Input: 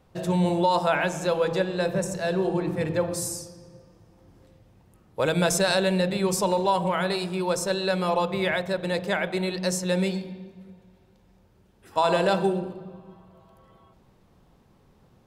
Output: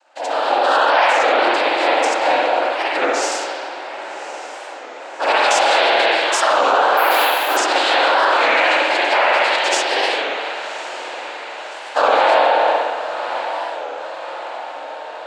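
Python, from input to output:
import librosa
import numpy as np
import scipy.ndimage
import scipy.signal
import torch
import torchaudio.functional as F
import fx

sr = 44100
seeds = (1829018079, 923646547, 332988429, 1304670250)

p1 = scipy.signal.sosfilt(scipy.signal.butter(12, 560.0, 'highpass', fs=sr, output='sos'), x)
p2 = p1 + 0.39 * np.pad(p1, (int(2.7 * sr / 1000.0), 0))[:len(p1)]
p3 = fx.noise_vocoder(p2, sr, seeds[0], bands=8)
p4 = p3 + fx.echo_diffused(p3, sr, ms=1142, feedback_pct=61, wet_db=-14.5, dry=0)
p5 = fx.rev_spring(p4, sr, rt60_s=1.8, pass_ms=(46, 57), chirp_ms=25, drr_db=-8.0)
p6 = fx.over_compress(p5, sr, threshold_db=-22.0, ratio=-1.0)
p7 = p5 + F.gain(torch.from_numpy(p6), 1.0).numpy()
p8 = fx.resample_bad(p7, sr, factor=3, down='none', up='hold', at=(6.97, 7.57))
y = fx.record_warp(p8, sr, rpm=33.33, depth_cents=160.0)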